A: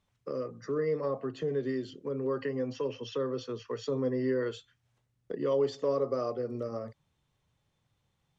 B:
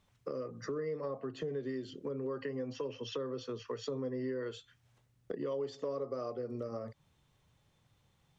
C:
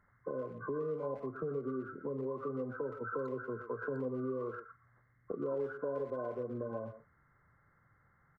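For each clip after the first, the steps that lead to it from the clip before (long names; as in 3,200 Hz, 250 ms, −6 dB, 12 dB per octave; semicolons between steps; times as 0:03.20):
downward compressor 3 to 1, threshold −44 dBFS, peak gain reduction 15 dB; level +5 dB
hearing-aid frequency compression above 1,000 Hz 4 to 1; far-end echo of a speakerphone 120 ms, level −10 dB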